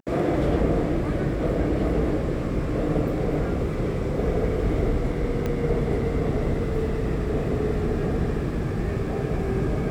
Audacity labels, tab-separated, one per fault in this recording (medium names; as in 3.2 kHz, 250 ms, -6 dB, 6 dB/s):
5.460000	5.460000	pop -15 dBFS